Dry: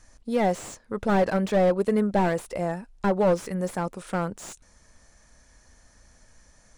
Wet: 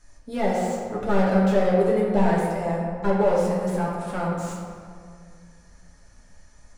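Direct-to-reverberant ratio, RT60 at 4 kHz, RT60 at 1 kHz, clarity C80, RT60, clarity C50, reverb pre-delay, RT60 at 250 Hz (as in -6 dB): -6.0 dB, 1.1 s, 2.0 s, 2.0 dB, 2.1 s, 0.0 dB, 5 ms, 2.3 s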